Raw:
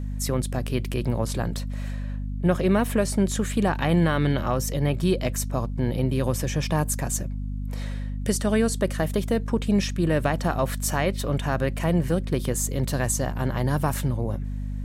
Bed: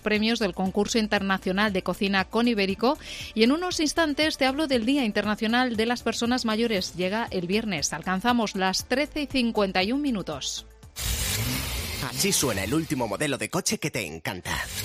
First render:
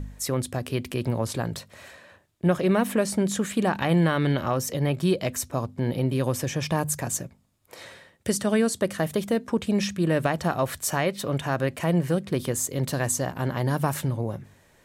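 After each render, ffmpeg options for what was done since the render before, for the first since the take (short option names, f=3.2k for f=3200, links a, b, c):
-af "bandreject=f=50:t=h:w=4,bandreject=f=100:t=h:w=4,bandreject=f=150:t=h:w=4,bandreject=f=200:t=h:w=4,bandreject=f=250:t=h:w=4"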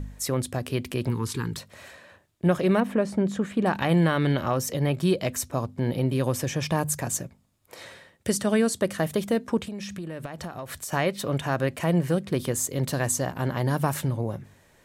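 -filter_complex "[0:a]asettb=1/sr,asplit=3[a][b][c];[a]atrim=end=1.094[d];[b]atrim=start=1.09:end=1.58,asetpts=PTS-STARTPTS,afade=t=in:d=0.004:c=qsin,afade=t=out:st=0.486:d=0.004:c=qsin,asuperstop=centerf=640:order=8:qfactor=1.5[e];[c]atrim=start=1.576[f];[d][e]acrossfade=d=0.004:c1=hsin:c2=qsin[g];[g][f]acrossfade=d=0.004:c1=qsin:c2=hsin,asettb=1/sr,asplit=3[h][i][j];[h]atrim=end=2.804[k];[i]atrim=start=2.8:end=3.66,asetpts=PTS-STARTPTS,afade=t=in:d=0.004:c=qsin,afade=t=out:st=0.856:d=0.004:c=qsin,lowpass=f=1.4k:p=1[l];[j]atrim=start=3.656[m];[k][l]acrossfade=d=0.004:c1=hsin:c2=qsin[n];[n][m]acrossfade=d=0.004:c1=qsin:c2=hsin,asettb=1/sr,asplit=3[o][p][q];[o]atrim=end=9.614[r];[p]atrim=start=9.61:end=10.93,asetpts=PTS-STARTPTS,afade=t=in:d=0.004:c=qsin,afade=t=out:st=1.316:d=0.004:c=qsin,acompressor=threshold=-31dB:ratio=10:attack=3.2:release=140:knee=1:detection=peak[s];[q]atrim=start=10.926[t];[r][s]acrossfade=d=0.004:c1=hsin:c2=qsin[u];[u][t]acrossfade=d=0.004:c1=qsin:c2=hsin"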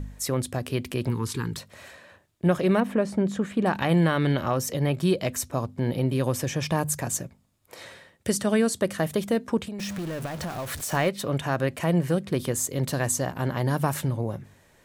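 -filter_complex "[0:a]asettb=1/sr,asplit=3[a][b][c];[a]atrim=end=9.794[d];[b]atrim=start=9.79:end=11.09,asetpts=PTS-STARTPTS,afade=t=in:d=0.004:c=qsin,afade=t=out:st=1.296:d=0.004:c=qsin,aeval=exprs='val(0)+0.5*0.0211*sgn(val(0))':c=same[e];[c]atrim=start=11.086[f];[d][e]acrossfade=d=0.004:c1=hsin:c2=qsin[g];[g][f]acrossfade=d=0.004:c1=qsin:c2=hsin"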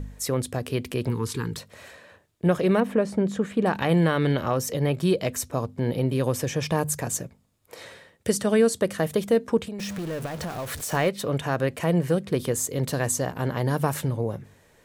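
-af "equalizer=f=460:w=6.2:g=6.5"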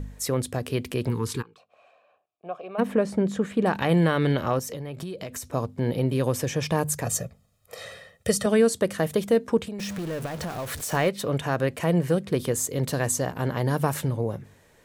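-filter_complex "[0:a]asplit=3[a][b][c];[a]afade=t=out:st=1.41:d=0.02[d];[b]asplit=3[e][f][g];[e]bandpass=f=730:t=q:w=8,volume=0dB[h];[f]bandpass=f=1.09k:t=q:w=8,volume=-6dB[i];[g]bandpass=f=2.44k:t=q:w=8,volume=-9dB[j];[h][i][j]amix=inputs=3:normalize=0,afade=t=in:st=1.41:d=0.02,afade=t=out:st=2.78:d=0.02[k];[c]afade=t=in:st=2.78:d=0.02[l];[d][k][l]amix=inputs=3:normalize=0,asettb=1/sr,asplit=3[m][n][o];[m]atrim=end=4.594[p];[n]atrim=start=4.59:end=5.48,asetpts=PTS-STARTPTS,afade=t=in:d=0.004:c=qsin,afade=t=out:st=0.886:d=0.004:c=qsin,acompressor=threshold=-30dB:ratio=16:attack=3.2:release=140:knee=1:detection=peak[q];[o]atrim=start=5.476[r];[p][q]acrossfade=d=0.004:c1=hsin:c2=qsin[s];[s][r]acrossfade=d=0.004:c1=qsin:c2=hsin,asettb=1/sr,asplit=3[t][u][v];[t]atrim=end=7.054[w];[u]atrim=start=7.05:end=8.46,asetpts=PTS-STARTPTS,afade=t=in:d=0.004:c=qsin,afade=t=out:st=1.406:d=0.004:c=qsin,aecho=1:1:1.6:0.81,atrim=end_sample=62181[x];[v]atrim=start=8.456[y];[w][x]acrossfade=d=0.004:c1=hsin:c2=qsin[z];[z][y]acrossfade=d=0.004:c1=qsin:c2=hsin"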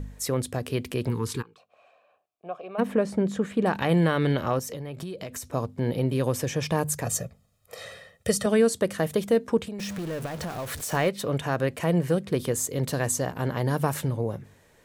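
-af "volume=-1dB"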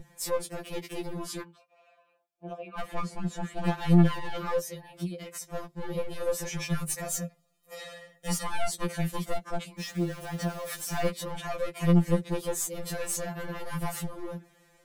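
-af "aeval=exprs='clip(val(0),-1,0.0531)':c=same,afftfilt=real='re*2.83*eq(mod(b,8),0)':imag='im*2.83*eq(mod(b,8),0)':win_size=2048:overlap=0.75"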